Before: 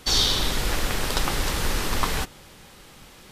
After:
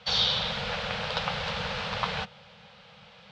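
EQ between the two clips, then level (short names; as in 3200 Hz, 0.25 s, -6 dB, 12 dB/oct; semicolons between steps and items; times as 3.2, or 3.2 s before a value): elliptic band-stop 210–470 Hz, stop band 40 dB; speaker cabinet 130–4000 Hz, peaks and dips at 260 Hz -7 dB, 1100 Hz -4 dB, 1900 Hz -5 dB; 0.0 dB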